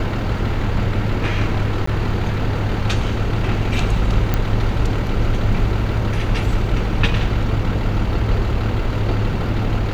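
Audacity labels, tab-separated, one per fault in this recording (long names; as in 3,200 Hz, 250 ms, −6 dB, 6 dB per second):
1.860000	1.870000	drop-out 14 ms
4.340000	4.340000	click −5 dBFS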